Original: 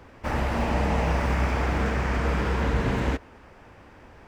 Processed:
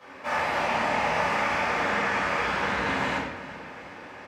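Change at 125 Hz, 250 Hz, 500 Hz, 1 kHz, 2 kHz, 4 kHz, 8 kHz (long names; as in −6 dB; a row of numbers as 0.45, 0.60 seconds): −14.0, −6.0, −0.5, +4.5, +6.0, +5.0, +2.0 decibels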